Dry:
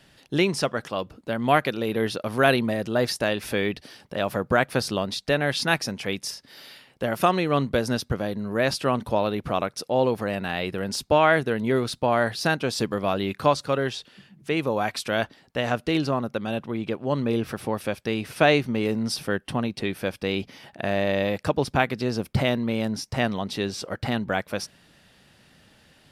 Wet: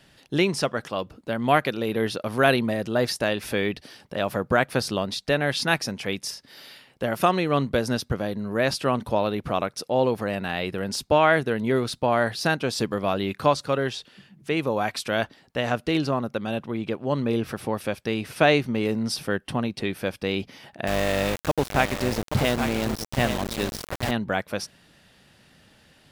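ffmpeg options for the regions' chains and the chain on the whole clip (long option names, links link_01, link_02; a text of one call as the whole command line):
ffmpeg -i in.wav -filter_complex "[0:a]asettb=1/sr,asplit=3[link_01][link_02][link_03];[link_01]atrim=end=20.874[link_04];[link_02]atrim=start=20.87:end=24.11,asetpts=PTS-STARTPTS,afade=type=in:duration=0.004:curve=qsin,afade=type=out:start_time=3.236:duration=0.004:curve=qsin,aecho=1:1:829:0.422,atrim=end_sample=142884,aeval=exprs='val(0)+0.02*(sin(2*PI*50*n/s)+sin(2*PI*2*50*n/s)/2+sin(2*PI*3*50*n/s)/3+sin(2*PI*4*50*n/s)/4+sin(2*PI*5*50*n/s)/5)':channel_layout=same,aeval=exprs='val(0)*gte(abs(val(0)),0.0562)':channel_layout=same[link_05];[link_03]atrim=start=24.106[link_06];[link_04][link_05]acrossfade=duration=0.004:curve1=hsin:curve2=qsin[link_07];[link_07][link_06]acrossfade=duration=0.004:curve1=qsin:curve2=hsin" out.wav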